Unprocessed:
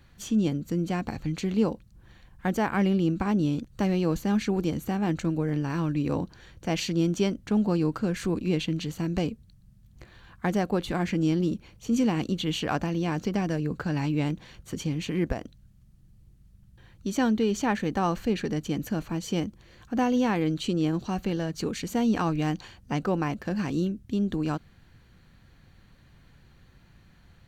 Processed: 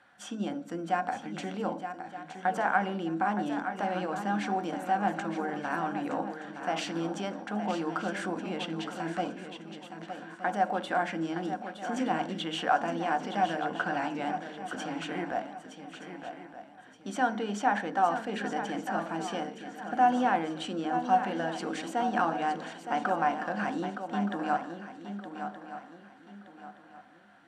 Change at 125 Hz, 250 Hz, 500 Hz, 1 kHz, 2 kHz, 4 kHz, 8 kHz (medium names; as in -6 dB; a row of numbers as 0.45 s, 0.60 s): -13.5 dB, -8.0 dB, -3.5 dB, +6.5 dB, +3.0 dB, -3.5 dB, -6.5 dB